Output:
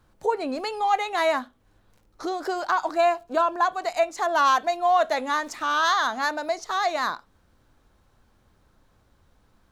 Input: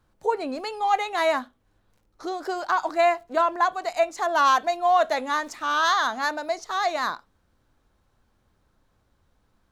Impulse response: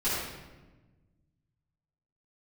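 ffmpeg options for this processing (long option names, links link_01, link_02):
-filter_complex "[0:a]asettb=1/sr,asplit=3[link_01][link_02][link_03];[link_01]atrim=end=2.964[link_04];[link_02]atrim=start=2.96:end=3.65,asetpts=PTS-STARTPTS,afade=type=in:duration=0.004:curve=qsin,afade=type=out:start_time=0.686:duration=0.004:curve=qsin,bandreject=frequency=2000:width=5.3[link_05];[link_03]atrim=start=3.646[link_06];[link_04][link_05]acrossfade=duration=0.004:curve1=hsin:curve2=qsin[link_07];[link_07][link_06]acrossfade=duration=0.004:curve1=qsin:curve2=hsin,asplit=2[link_08][link_09];[link_09]acompressor=threshold=-35dB:ratio=6,volume=2dB[link_10];[link_08][link_10]amix=inputs=2:normalize=0,volume=-2dB"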